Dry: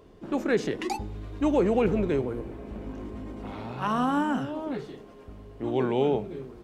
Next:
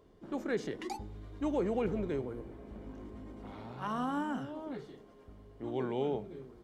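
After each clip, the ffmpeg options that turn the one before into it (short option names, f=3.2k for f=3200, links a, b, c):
-af "bandreject=f=2.6k:w=10,volume=-9dB"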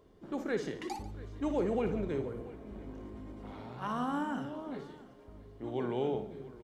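-af "aecho=1:1:58|143|686:0.335|0.141|0.106"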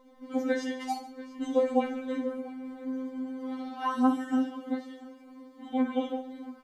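-af "afftfilt=real='re*3.46*eq(mod(b,12),0)':imag='im*3.46*eq(mod(b,12),0)':win_size=2048:overlap=0.75,volume=7.5dB"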